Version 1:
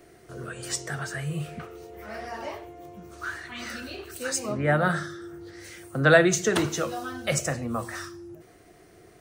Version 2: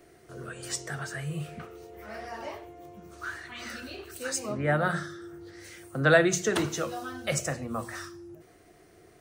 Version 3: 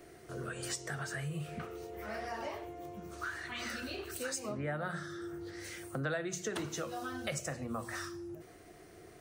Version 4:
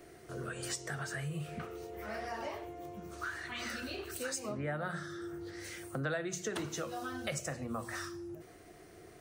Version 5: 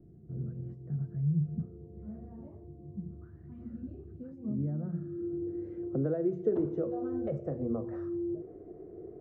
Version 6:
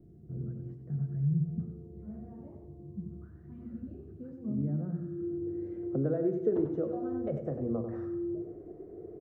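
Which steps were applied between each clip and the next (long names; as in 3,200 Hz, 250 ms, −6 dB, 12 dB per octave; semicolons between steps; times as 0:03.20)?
mains-hum notches 60/120/180/240 Hz; level −3 dB
downward compressor 4 to 1, threshold −38 dBFS, peak gain reduction 19.5 dB; level +1.5 dB
no processing that can be heard
low-pass filter sweep 180 Hz → 420 Hz, 0:04.10–0:06.24; level +4 dB
repeating echo 95 ms, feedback 39%, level −8 dB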